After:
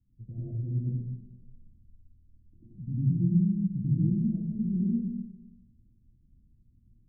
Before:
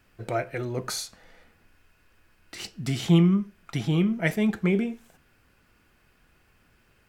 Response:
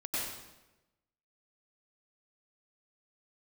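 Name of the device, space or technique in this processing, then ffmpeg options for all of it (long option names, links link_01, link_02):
club heard from the street: -filter_complex "[0:a]alimiter=limit=-16dB:level=0:latency=1:release=425,lowpass=frequency=200:width=0.5412,lowpass=frequency=200:width=1.3066[link_01];[1:a]atrim=start_sample=2205[link_02];[link_01][link_02]afir=irnorm=-1:irlink=0"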